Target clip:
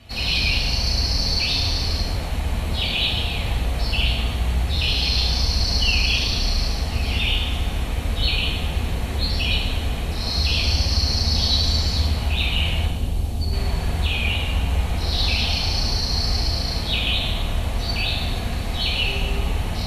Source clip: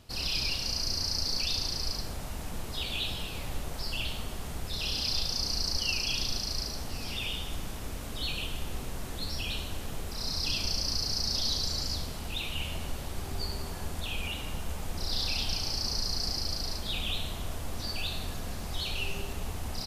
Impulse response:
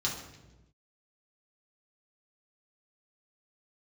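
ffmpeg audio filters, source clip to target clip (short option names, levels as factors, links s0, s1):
-filter_complex "[0:a]asettb=1/sr,asplit=3[s0][s1][s2];[s0]atrim=end=12.864[s3];[s1]atrim=start=12.86:end=13.53,asetpts=PTS-STARTPTS,afade=t=in:d=0.004:c=qsin,afade=t=out:st=0.666:d=0.004:c=qsin,equalizer=f=1700:t=o:w=2.3:g=-14.5[s4];[s2]atrim=start=13.526[s5];[s3][s4]acrossfade=d=0.004:c1=hsin:c2=qsin[s6];[s6][s5]acrossfade=d=0.004:c1=qsin:c2=hsin[s7];[1:a]atrim=start_sample=2205,asetrate=26460,aresample=44100[s8];[s7][s8]afir=irnorm=-1:irlink=0"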